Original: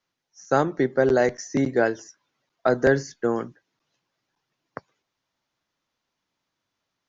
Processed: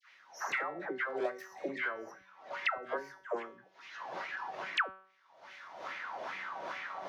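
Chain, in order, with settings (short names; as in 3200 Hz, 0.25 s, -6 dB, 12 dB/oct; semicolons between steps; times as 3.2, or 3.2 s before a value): tracing distortion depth 0.31 ms; recorder AGC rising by 42 dB/s; wah 2.4 Hz 610–2200 Hz, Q 4.3; resonator 190 Hz, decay 0.41 s, harmonics all, mix 70%; dispersion lows, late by 0.124 s, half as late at 840 Hz; three-band squash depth 100%; gain +5.5 dB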